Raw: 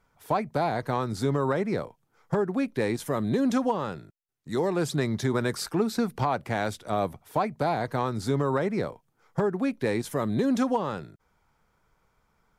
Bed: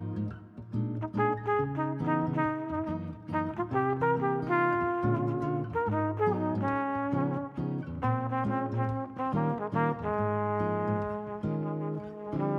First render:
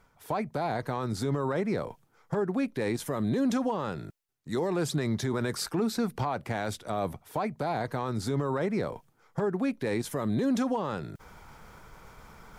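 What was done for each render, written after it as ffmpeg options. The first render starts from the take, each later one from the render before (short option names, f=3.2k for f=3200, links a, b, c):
-af "alimiter=limit=-20.5dB:level=0:latency=1:release=24,areverse,acompressor=mode=upward:threshold=-33dB:ratio=2.5,areverse"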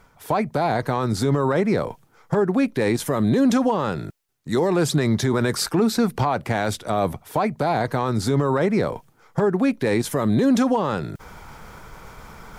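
-af "volume=9dB"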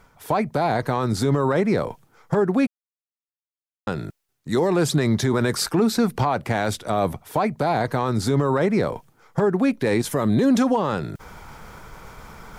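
-filter_complex "[0:a]asplit=3[a][b][c];[a]atrim=end=2.67,asetpts=PTS-STARTPTS,afade=t=out:st=2.666:d=0.004:c=hsin[d];[b]atrim=start=2.67:end=3.87,asetpts=PTS-STARTPTS,volume=0[e];[c]atrim=start=3.87,asetpts=PTS-STARTPTS,afade=t=in:d=0.004:c=hsin[f];[d][e][f]concat=n=3:v=0:a=1"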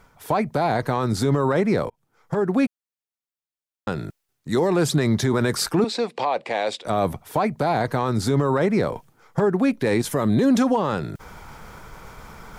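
-filter_complex "[0:a]asettb=1/sr,asplit=3[a][b][c];[a]atrim=end=5.844[d];[b]atrim=start=5.84:end=6.85,asetpts=PTS-STARTPTS,afade=t=in:d=0.004:c=qsin,afade=t=out:st=1.006:d=0.004:c=qsin,highpass=440,equalizer=f=520:t=q:w=4:g=6,equalizer=f=1.4k:t=q:w=4:g=-10,equalizer=f=2.5k:t=q:w=4:g=4,equalizer=f=3.8k:t=q:w=4:g=3,equalizer=f=6.1k:t=q:w=4:g=-7,lowpass=f=7.3k:w=0.5412,lowpass=f=7.3k:w=1.3066[e];[c]atrim=start=6.846[f];[d][e]acrossfade=d=0.004:c1=hsin:c2=qsin[g];[g][f]acrossfade=d=0.004:c1=qsin:c2=hsin,asplit=2[h][i];[h]atrim=end=1.9,asetpts=PTS-STARTPTS,afade=t=out:st=1.896:d=0.004:c=hsin[j];[i]atrim=start=1.9,asetpts=PTS-STARTPTS,afade=t=in:d=0.67[k];[j][k]concat=n=2:v=0:a=1"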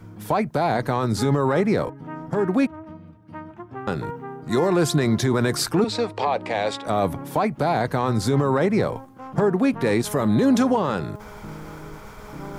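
-filter_complex "[1:a]volume=-6.5dB[a];[0:a][a]amix=inputs=2:normalize=0"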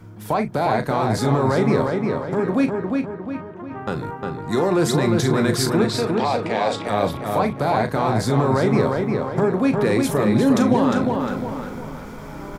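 -filter_complex "[0:a]asplit=2[a][b];[b]adelay=37,volume=-10dB[c];[a][c]amix=inputs=2:normalize=0,asplit=2[d][e];[e]adelay=355,lowpass=f=4.1k:p=1,volume=-3.5dB,asplit=2[f][g];[g]adelay=355,lowpass=f=4.1k:p=1,volume=0.47,asplit=2[h][i];[i]adelay=355,lowpass=f=4.1k:p=1,volume=0.47,asplit=2[j][k];[k]adelay=355,lowpass=f=4.1k:p=1,volume=0.47,asplit=2[l][m];[m]adelay=355,lowpass=f=4.1k:p=1,volume=0.47,asplit=2[n][o];[o]adelay=355,lowpass=f=4.1k:p=1,volume=0.47[p];[d][f][h][j][l][n][p]amix=inputs=7:normalize=0"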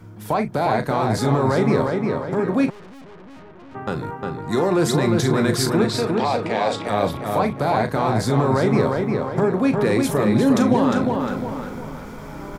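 -filter_complex "[0:a]asettb=1/sr,asplit=3[a][b][c];[a]atrim=end=2.704[d];[b]atrim=start=2.7:end=3.75,asetpts=PTS-STARTPTS,afade=t=in:d=0.004:c=qsin,afade=t=out:st=1.046:d=0.004:c=qsin,aeval=exprs='(tanh(112*val(0)+0.7)-tanh(0.7))/112':c=same[e];[c]atrim=start=3.746[f];[d][e]acrossfade=d=0.004:c1=hsin:c2=qsin[g];[g][f]acrossfade=d=0.004:c1=qsin:c2=hsin"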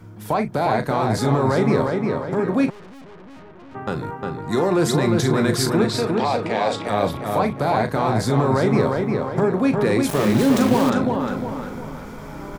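-filter_complex "[0:a]asettb=1/sr,asplit=3[a][b][c];[a]atrim=end=10.094[d];[b]atrim=start=10.09:end=10.9,asetpts=PTS-STARTPTS,afade=t=in:d=0.004:c=qsin,afade=t=out:st=0.806:d=0.004:c=qsin,aeval=exprs='val(0)*gte(abs(val(0)),0.075)':c=same[e];[c]atrim=start=10.896[f];[d][e]acrossfade=d=0.004:c1=hsin:c2=qsin[g];[g][f]acrossfade=d=0.004:c1=qsin:c2=hsin"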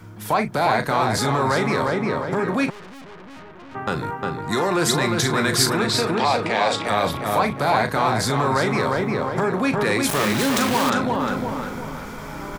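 -filter_complex "[0:a]acrossover=split=930[a][b];[a]alimiter=limit=-16dB:level=0:latency=1[c];[b]acontrast=47[d];[c][d]amix=inputs=2:normalize=0"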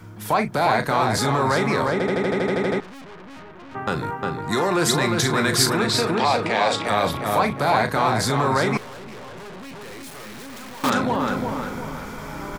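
-filter_complex "[0:a]asettb=1/sr,asplit=3[a][b][c];[a]atrim=end=8.774[d];[b]atrim=start=8.77:end=10.84,asetpts=PTS-STARTPTS,afade=t=in:d=0.004:c=qsin,afade=t=out:st=2.066:d=0.004:c=qsin,aeval=exprs='(tanh(70.8*val(0)+0.45)-tanh(0.45))/70.8':c=same[e];[c]atrim=start=10.836[f];[d][e]acrossfade=d=0.004:c1=hsin:c2=qsin[g];[g][f]acrossfade=d=0.004:c1=qsin:c2=hsin,asplit=12[h][i][j][k][l][m][n][o][p][q][r][s];[h]atrim=end=2.002[t];[i]atrim=start=1.918:end=2.002[u];[j]atrim=start=1.918:end=2.002[v];[k]atrim=start=1.918:end=2.002[w];[l]atrim=start=1.918:end=2.002[x];[m]atrim=start=1.918:end=2.002[y];[n]atrim=start=1.918:end=2.002[z];[o]atrim=start=1.918:end=2.002[aa];[p]atrim=start=1.918:end=2.002[ab];[q]atrim=start=1.918:end=2.002[ac];[r]atrim=start=1.918:end=2.002[ad];[s]atrim=start=2.798[ae];[t][u]acrossfade=d=0.004:c1=hsin:c2=hsin[af];[af][v]acrossfade=d=0.004:c1=hsin:c2=hsin[ag];[ag][w]acrossfade=d=0.004:c1=hsin:c2=hsin[ah];[ah][x]acrossfade=d=0.004:c1=hsin:c2=hsin[ai];[ai][y]acrossfade=d=0.004:c1=hsin:c2=hsin[aj];[aj][z]acrossfade=d=0.004:c1=hsin:c2=hsin[ak];[ak][aa]acrossfade=d=0.004:c1=hsin:c2=hsin[al];[al][ab]acrossfade=d=0.004:c1=hsin:c2=hsin[am];[am][ac]acrossfade=d=0.004:c1=hsin:c2=hsin[an];[an][ad]acrossfade=d=0.004:c1=hsin:c2=hsin[ao];[ao][ae]acrossfade=d=0.004:c1=hsin:c2=hsin"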